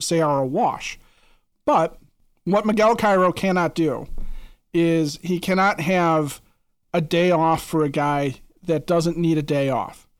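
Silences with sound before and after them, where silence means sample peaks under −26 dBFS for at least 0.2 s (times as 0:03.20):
0:00.93–0:01.67
0:01.87–0:02.47
0:04.38–0:04.75
0:06.33–0:06.94
0:08.31–0:08.68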